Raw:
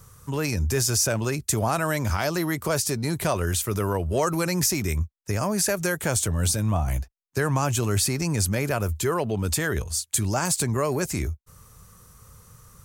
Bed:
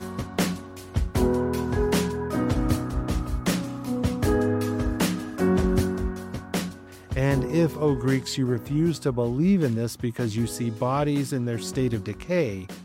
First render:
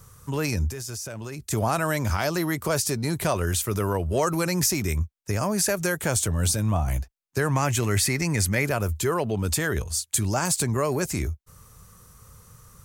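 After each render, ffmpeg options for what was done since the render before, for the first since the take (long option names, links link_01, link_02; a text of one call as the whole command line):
ffmpeg -i in.wav -filter_complex "[0:a]asplit=3[link_01][link_02][link_03];[link_01]afade=type=out:start_time=0.68:duration=0.02[link_04];[link_02]acompressor=threshold=-31dB:ratio=8:attack=3.2:release=140:knee=1:detection=peak,afade=type=in:start_time=0.68:duration=0.02,afade=type=out:start_time=1.5:duration=0.02[link_05];[link_03]afade=type=in:start_time=1.5:duration=0.02[link_06];[link_04][link_05][link_06]amix=inputs=3:normalize=0,asettb=1/sr,asplit=3[link_07][link_08][link_09];[link_07]atrim=end=7.554[link_10];[link_08]atrim=start=7.55:end=8.65,asetpts=PTS-STARTPTS,afade=type=in:duration=0.004:curve=qsin,afade=type=out:start_time=1.096:duration=0.004:curve=qsin,equalizer=frequency=2000:width_type=o:width=0.39:gain=11[link_11];[link_09]atrim=start=8.646[link_12];[link_10][link_11]acrossfade=duration=0.004:curve1=hsin:curve2=qsin[link_13];[link_13][link_12]acrossfade=duration=0.004:curve1=qsin:curve2=hsin" out.wav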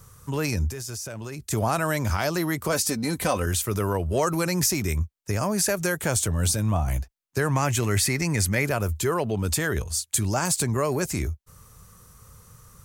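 ffmpeg -i in.wav -filter_complex "[0:a]asettb=1/sr,asplit=3[link_01][link_02][link_03];[link_01]atrim=end=2.724[link_04];[link_02]atrim=start=2.72:end=3.46,asetpts=PTS-STARTPTS,afade=type=in:duration=0.004:curve=qsin,afade=type=out:start_time=0.736:duration=0.004:curve=qsin,aecho=1:1:3.9:0.61,atrim=end_sample=32634[link_05];[link_03]atrim=start=3.456[link_06];[link_04][link_05]acrossfade=duration=0.004:curve1=hsin:curve2=qsin[link_07];[link_07][link_06]acrossfade=duration=0.004:curve1=qsin:curve2=hsin" out.wav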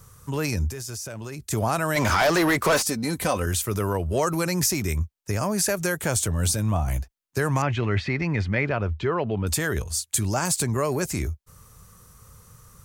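ffmpeg -i in.wav -filter_complex "[0:a]asplit=3[link_01][link_02][link_03];[link_01]afade=type=out:start_time=1.95:duration=0.02[link_04];[link_02]asplit=2[link_05][link_06];[link_06]highpass=frequency=720:poles=1,volume=24dB,asoftclip=type=tanh:threshold=-11.5dB[link_07];[link_05][link_07]amix=inputs=2:normalize=0,lowpass=frequency=3000:poles=1,volume=-6dB,afade=type=in:start_time=1.95:duration=0.02,afade=type=out:start_time=2.81:duration=0.02[link_08];[link_03]afade=type=in:start_time=2.81:duration=0.02[link_09];[link_04][link_08][link_09]amix=inputs=3:normalize=0,asettb=1/sr,asplit=3[link_10][link_11][link_12];[link_10]atrim=end=7.624[link_13];[link_11]atrim=start=7.62:end=9.47,asetpts=PTS-STARTPTS,afade=type=in:duration=0.004:curve=qsin,afade=type=out:start_time=1.846:duration=0.004:curve=qsin,lowpass=frequency=3500:width=0.5412,lowpass=frequency=3500:width=1.3066[link_14];[link_12]atrim=start=9.466[link_15];[link_13][link_14]acrossfade=duration=0.004:curve1=hsin:curve2=qsin[link_16];[link_16][link_15]acrossfade=duration=0.004:curve1=qsin:curve2=hsin" out.wav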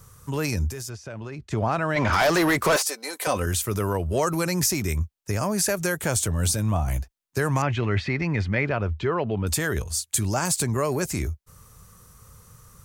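ffmpeg -i in.wav -filter_complex "[0:a]asplit=3[link_01][link_02][link_03];[link_01]afade=type=out:start_time=0.88:duration=0.02[link_04];[link_02]lowpass=3200,afade=type=in:start_time=0.88:duration=0.02,afade=type=out:start_time=2.12:duration=0.02[link_05];[link_03]afade=type=in:start_time=2.12:duration=0.02[link_06];[link_04][link_05][link_06]amix=inputs=3:normalize=0,asettb=1/sr,asplit=3[link_07][link_08][link_09];[link_07]atrim=end=2.764[link_10];[link_08]atrim=start=2.76:end=3.27,asetpts=PTS-STARTPTS,afade=type=in:duration=0.004:curve=qsin,afade=type=out:start_time=0.506:duration=0.004:curve=qsin,highpass=frequency=440:width=0.5412,highpass=frequency=440:width=1.3066[link_11];[link_09]atrim=start=3.266[link_12];[link_10][link_11]acrossfade=duration=0.004:curve1=hsin:curve2=qsin[link_13];[link_13][link_12]acrossfade=duration=0.004:curve1=qsin:curve2=hsin" out.wav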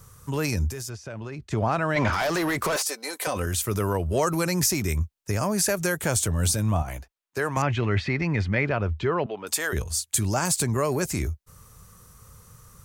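ffmpeg -i in.wav -filter_complex "[0:a]asettb=1/sr,asplit=3[link_01][link_02][link_03];[link_01]atrim=end=2.094[link_04];[link_02]atrim=start=2.09:end=3.58,asetpts=PTS-STARTPTS,afade=type=in:duration=0.004:curve=qsin,afade=type=out:start_time=1.486:duration=0.004:curve=qsin,acompressor=threshold=-22dB:ratio=6:attack=3.2:release=140:knee=1:detection=peak[link_05];[link_03]atrim=start=3.576[link_06];[link_04][link_05]acrossfade=duration=0.004:curve1=hsin:curve2=qsin[link_07];[link_07][link_06]acrossfade=duration=0.004:curve1=qsin:curve2=hsin,asettb=1/sr,asplit=3[link_08][link_09][link_10];[link_08]atrim=end=6.824[link_11];[link_09]atrim=start=6.82:end=7.57,asetpts=PTS-STARTPTS,afade=type=in:duration=0.004:curve=qsin,afade=type=out:start_time=0.746:duration=0.004:curve=qsin,bass=frequency=250:gain=-11,treble=frequency=4000:gain=-6[link_12];[link_10]atrim=start=7.566[link_13];[link_11][link_12]acrossfade=duration=0.004:curve1=hsin:curve2=qsin[link_14];[link_14][link_13]acrossfade=duration=0.004:curve1=qsin:curve2=hsin,asettb=1/sr,asplit=3[link_15][link_16][link_17];[link_15]atrim=end=9.264[link_18];[link_16]atrim=start=9.26:end=9.73,asetpts=PTS-STARTPTS,afade=type=in:duration=0.004:curve=qsin,afade=type=out:start_time=0.466:duration=0.004:curve=qsin,highpass=480[link_19];[link_17]atrim=start=9.726[link_20];[link_18][link_19]acrossfade=duration=0.004:curve1=hsin:curve2=qsin[link_21];[link_21][link_20]acrossfade=duration=0.004:curve1=qsin:curve2=hsin" out.wav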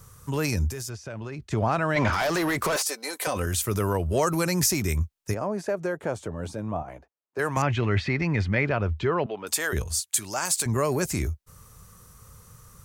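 ffmpeg -i in.wav -filter_complex "[0:a]asplit=3[link_01][link_02][link_03];[link_01]afade=type=out:start_time=5.33:duration=0.02[link_04];[link_02]bandpass=frequency=500:width_type=q:width=0.79,afade=type=in:start_time=5.33:duration=0.02,afade=type=out:start_time=7.38:duration=0.02[link_05];[link_03]afade=type=in:start_time=7.38:duration=0.02[link_06];[link_04][link_05][link_06]amix=inputs=3:normalize=0,asettb=1/sr,asplit=3[link_07][link_08][link_09];[link_07]atrim=end=10.004[link_10];[link_08]atrim=start=10:end=10.66,asetpts=PTS-STARTPTS,afade=type=in:duration=0.004:curve=qsin,afade=type=out:start_time=0.656:duration=0.004:curve=qsin,highpass=frequency=860:poles=1[link_11];[link_09]atrim=start=10.656[link_12];[link_10][link_11]acrossfade=duration=0.004:curve1=hsin:curve2=qsin[link_13];[link_13][link_12]acrossfade=duration=0.004:curve1=qsin:curve2=hsin" out.wav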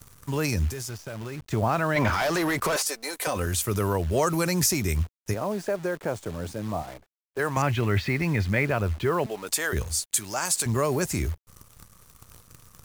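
ffmpeg -i in.wav -af "acrusher=bits=8:dc=4:mix=0:aa=0.000001" out.wav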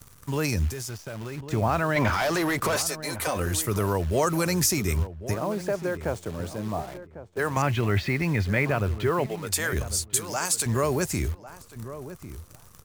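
ffmpeg -i in.wav -filter_complex "[0:a]asplit=2[link_01][link_02];[link_02]adelay=1099,lowpass=frequency=1100:poles=1,volume=-12.5dB,asplit=2[link_03][link_04];[link_04]adelay=1099,lowpass=frequency=1100:poles=1,volume=0.21,asplit=2[link_05][link_06];[link_06]adelay=1099,lowpass=frequency=1100:poles=1,volume=0.21[link_07];[link_01][link_03][link_05][link_07]amix=inputs=4:normalize=0" out.wav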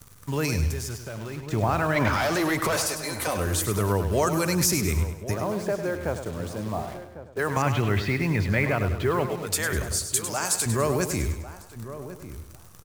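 ffmpeg -i in.wav -af "aecho=1:1:101|202|303|404|505:0.355|0.156|0.0687|0.0302|0.0133" out.wav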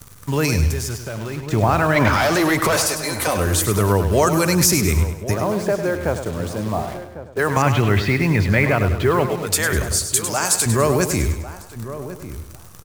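ffmpeg -i in.wav -af "volume=7dB,alimiter=limit=-3dB:level=0:latency=1" out.wav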